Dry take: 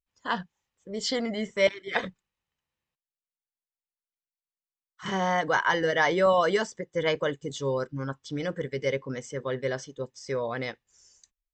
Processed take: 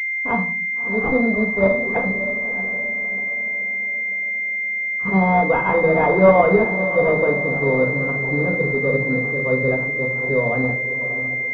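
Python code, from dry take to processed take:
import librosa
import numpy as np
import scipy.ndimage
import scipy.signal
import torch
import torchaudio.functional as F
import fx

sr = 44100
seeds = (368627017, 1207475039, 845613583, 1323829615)

y = fx.echo_diffused(x, sr, ms=625, feedback_pct=50, wet_db=-11)
y = fx.room_shoebox(y, sr, seeds[0], volume_m3=420.0, walls='furnished', distance_m=1.7)
y = fx.pwm(y, sr, carrier_hz=2100.0)
y = F.gain(torch.from_numpy(y), 7.0).numpy()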